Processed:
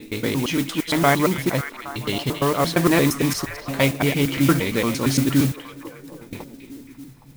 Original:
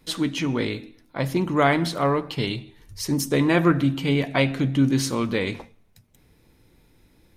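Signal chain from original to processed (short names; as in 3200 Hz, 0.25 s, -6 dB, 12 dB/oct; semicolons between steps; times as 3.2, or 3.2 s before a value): slices in reverse order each 0.115 s, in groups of 8; delay with a stepping band-pass 0.272 s, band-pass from 2800 Hz, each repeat -0.7 oct, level -6.5 dB; modulation noise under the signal 14 dB; gain +2 dB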